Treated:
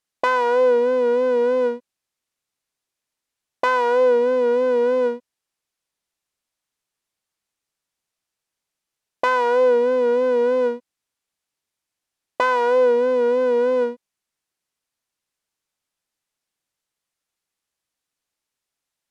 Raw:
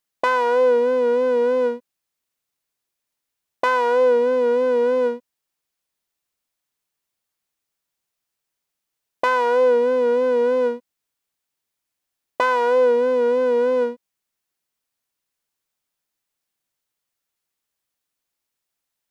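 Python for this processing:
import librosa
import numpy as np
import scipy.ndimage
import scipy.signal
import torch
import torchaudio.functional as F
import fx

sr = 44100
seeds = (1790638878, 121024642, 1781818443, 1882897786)

y = scipy.signal.sosfilt(scipy.signal.butter(2, 11000.0, 'lowpass', fs=sr, output='sos'), x)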